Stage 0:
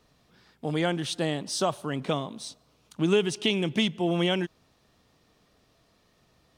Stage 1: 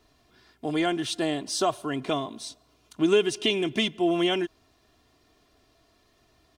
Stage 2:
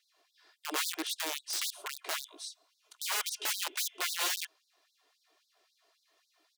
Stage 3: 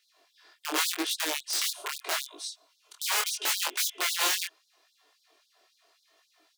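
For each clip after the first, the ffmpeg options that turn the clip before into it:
-af "aecho=1:1:2.9:0.62"
-af "aeval=exprs='(mod(12.6*val(0)+1,2)-1)/12.6':c=same,asubboost=boost=6.5:cutoff=130,afftfilt=real='re*gte(b*sr/1024,280*pow(3700/280,0.5+0.5*sin(2*PI*3.7*pts/sr)))':imag='im*gte(b*sr/1024,280*pow(3700/280,0.5+0.5*sin(2*PI*3.7*pts/sr)))':win_size=1024:overlap=0.75,volume=0.631"
-af "flanger=delay=19.5:depth=7.1:speed=0.81,volume=2.66"

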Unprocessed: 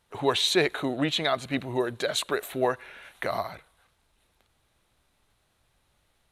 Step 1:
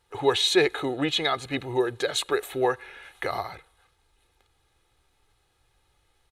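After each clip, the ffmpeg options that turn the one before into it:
-af "equalizer=f=12000:w=2.8:g=-4.5,aecho=1:1:2.4:0.58"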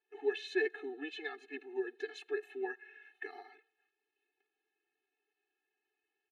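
-filter_complex "[0:a]asplit=3[s0][s1][s2];[s0]bandpass=f=530:t=q:w=8,volume=1[s3];[s1]bandpass=f=1840:t=q:w=8,volume=0.501[s4];[s2]bandpass=f=2480:t=q:w=8,volume=0.355[s5];[s3][s4][s5]amix=inputs=3:normalize=0,afftfilt=real='re*eq(mod(floor(b*sr/1024/230),2),1)':imag='im*eq(mod(floor(b*sr/1024/230),2),1)':win_size=1024:overlap=0.75,volume=1.26"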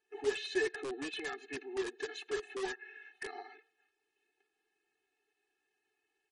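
-filter_complex "[0:a]asplit=2[s0][s1];[s1]aeval=exprs='(mod(70.8*val(0)+1,2)-1)/70.8':c=same,volume=0.708[s2];[s0][s2]amix=inputs=2:normalize=0" -ar 44100 -c:a libmp3lame -b:a 40k

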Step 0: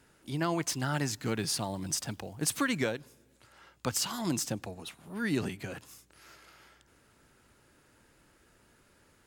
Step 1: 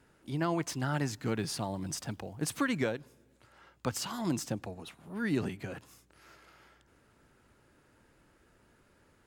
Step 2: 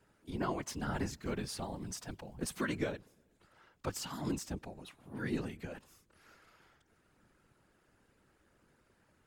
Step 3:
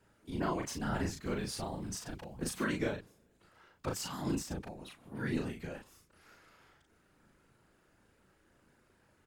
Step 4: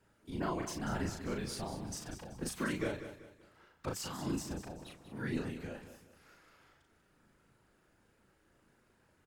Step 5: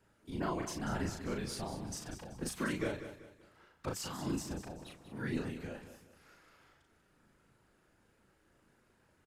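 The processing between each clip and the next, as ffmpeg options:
-af "highshelf=f=2700:g=-7.5"
-af "afftfilt=real='hypot(re,im)*cos(2*PI*random(0))':imag='hypot(re,im)*sin(2*PI*random(1))':win_size=512:overlap=0.75,volume=1.12"
-filter_complex "[0:a]asplit=2[s0][s1];[s1]adelay=37,volume=0.708[s2];[s0][s2]amix=inputs=2:normalize=0"
-af "aecho=1:1:191|382|573|764:0.282|0.0986|0.0345|0.0121,volume=0.794"
-af "aresample=32000,aresample=44100"

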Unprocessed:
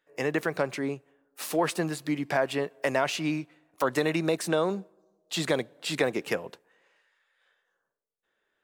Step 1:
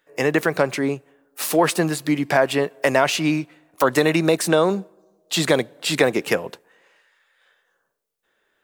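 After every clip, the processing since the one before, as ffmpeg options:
-af "highshelf=f=10000:g=5,volume=2.66"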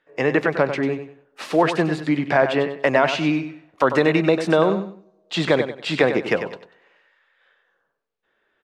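-filter_complex "[0:a]lowpass=3300,asplit=2[s0][s1];[s1]aecho=0:1:96|192|288:0.335|0.0904|0.0244[s2];[s0][s2]amix=inputs=2:normalize=0"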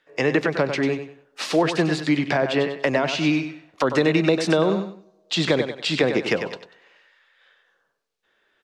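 -filter_complex "[0:a]equalizer=f=5300:w=0.62:g=9.5,acrossover=split=480[s0][s1];[s1]acompressor=threshold=0.0794:ratio=6[s2];[s0][s2]amix=inputs=2:normalize=0"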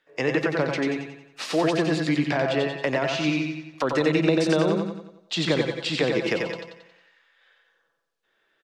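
-af "aecho=1:1:90|180|270|360|450|540:0.562|0.264|0.124|0.0584|0.0274|0.0129,volume=0.631"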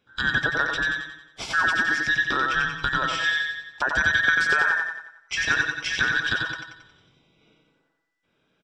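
-af "afftfilt=real='real(if(between(b,1,1012),(2*floor((b-1)/92)+1)*92-b,b),0)':imag='imag(if(between(b,1,1012),(2*floor((b-1)/92)+1)*92-b,b),0)*if(between(b,1,1012),-1,1)':win_size=2048:overlap=0.75,lowpass=7900"

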